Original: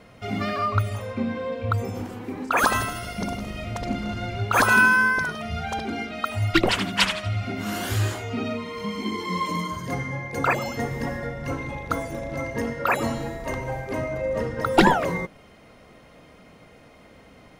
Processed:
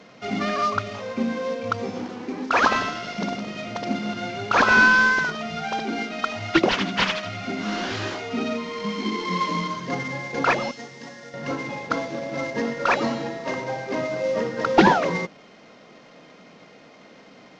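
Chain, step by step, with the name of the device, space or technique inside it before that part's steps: early wireless headset (high-pass 160 Hz 24 dB/octave; CVSD coder 32 kbps); 10.71–11.34 s: pre-emphasis filter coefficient 0.8; trim +2.5 dB

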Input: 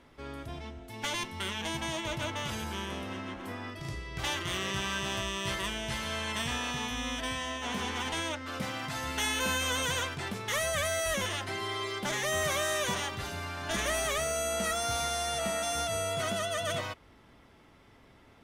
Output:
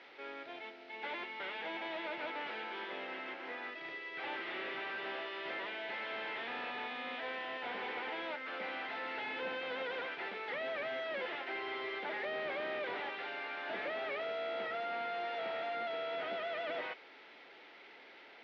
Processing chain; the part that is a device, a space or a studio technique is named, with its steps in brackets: digital answering machine (band-pass 390–3100 Hz; one-bit delta coder 32 kbps, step -50 dBFS; cabinet simulation 360–3800 Hz, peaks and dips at 630 Hz -4 dB, 1.1 kHz -10 dB, 2.2 kHz +4 dB); trim +1.5 dB

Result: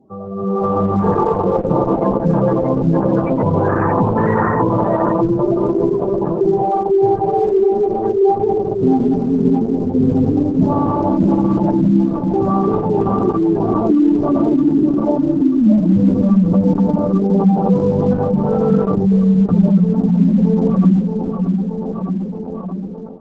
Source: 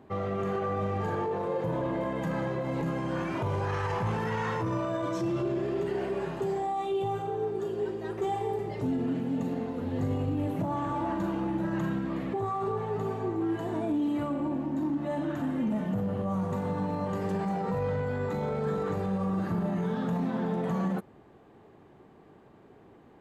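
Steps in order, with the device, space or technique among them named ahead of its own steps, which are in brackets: peaking EQ 200 Hz +5.5 dB 0.57 oct; tape echo 621 ms, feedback 74%, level -4 dB, low-pass 4.9 kHz; noise-suppressed video call (high-pass 110 Hz 12 dB/octave; spectral gate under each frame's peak -15 dB strong; level rider gain up to 15 dB; Opus 12 kbps 48 kHz)

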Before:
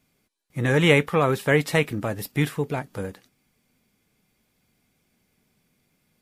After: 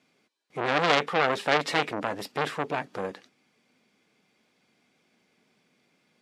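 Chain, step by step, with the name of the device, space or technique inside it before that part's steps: public-address speaker with an overloaded transformer (transformer saturation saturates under 4 kHz; band-pass 250–5400 Hz); trim +4 dB

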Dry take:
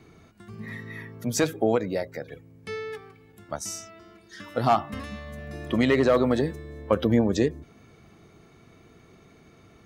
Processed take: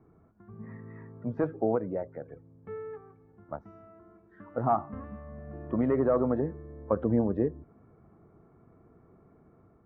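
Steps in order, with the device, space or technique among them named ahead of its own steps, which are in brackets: action camera in a waterproof case (low-pass 1.3 kHz 24 dB/octave; level rider gain up to 3 dB; trim -7.5 dB; AAC 128 kbps 48 kHz)

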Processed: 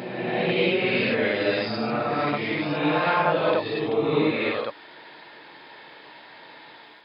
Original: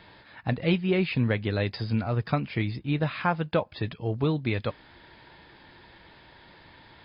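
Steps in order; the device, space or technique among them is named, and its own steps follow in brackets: ghost voice (reverse; reverberation RT60 1.9 s, pre-delay 38 ms, DRR -7.5 dB; reverse; high-pass 360 Hz 12 dB/octave)

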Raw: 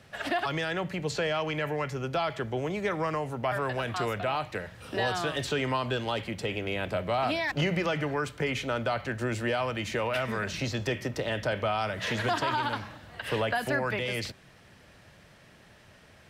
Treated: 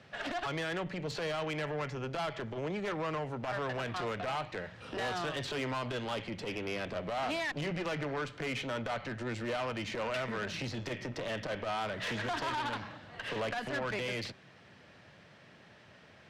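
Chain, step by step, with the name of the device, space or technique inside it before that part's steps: valve radio (band-pass 110–5000 Hz; valve stage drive 30 dB, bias 0.35; transformer saturation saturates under 200 Hz)

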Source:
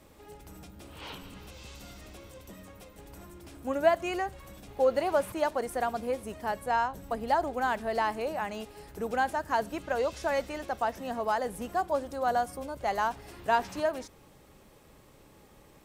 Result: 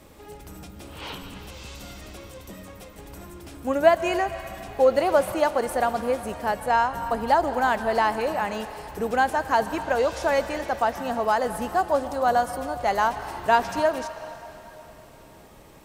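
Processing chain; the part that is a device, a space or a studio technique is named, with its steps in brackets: filtered reverb send (on a send: high-pass 560 Hz + low-pass 8.1 kHz + reverberation RT60 3.7 s, pre-delay 118 ms, DRR 10.5 dB); on the sum: trim +6.5 dB

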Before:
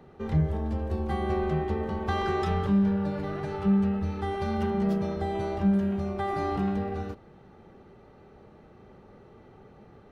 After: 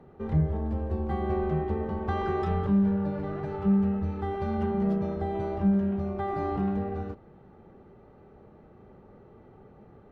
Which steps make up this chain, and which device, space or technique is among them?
through cloth (treble shelf 2.7 kHz -15 dB)

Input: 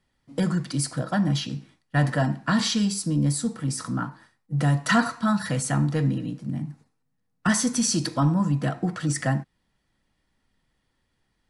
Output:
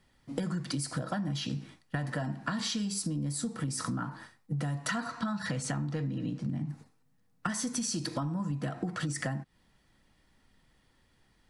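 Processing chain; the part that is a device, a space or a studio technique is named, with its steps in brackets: 5.06–6.69 s: low-pass 6.8 kHz 12 dB/octave; serial compression, peaks first (compression 5:1, threshold -31 dBFS, peak gain reduction 14 dB; compression 3:1, threshold -37 dBFS, peak gain reduction 7.5 dB); trim +5.5 dB

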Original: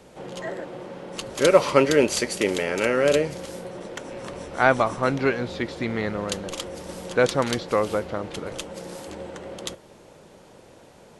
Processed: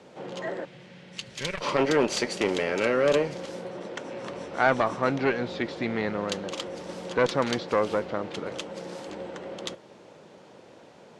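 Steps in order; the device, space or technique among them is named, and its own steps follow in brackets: valve radio (band-pass 140–5600 Hz; valve stage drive 10 dB, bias 0.25; transformer saturation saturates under 690 Hz); 0.65–1.61 s: high-order bell 570 Hz -14.5 dB 2.8 oct

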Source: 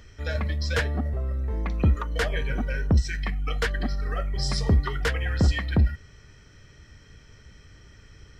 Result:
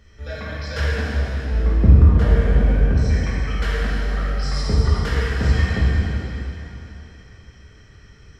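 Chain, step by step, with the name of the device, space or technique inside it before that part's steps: 1.51–2.86 s: tilt shelf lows +7.5 dB, about 840 Hz; swimming-pool hall (reverberation RT60 3.5 s, pre-delay 3 ms, DRR -8.5 dB; treble shelf 5.2 kHz -5 dB); trim -5 dB

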